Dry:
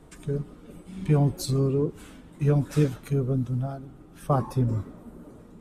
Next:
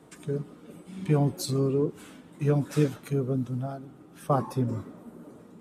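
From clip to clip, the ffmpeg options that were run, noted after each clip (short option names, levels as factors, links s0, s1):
-af "highpass=150"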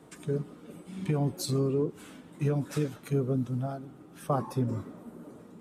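-af "alimiter=limit=0.119:level=0:latency=1:release=327"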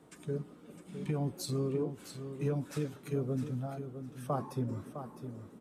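-af "aecho=1:1:658|1316|1974:0.335|0.067|0.0134,volume=0.531"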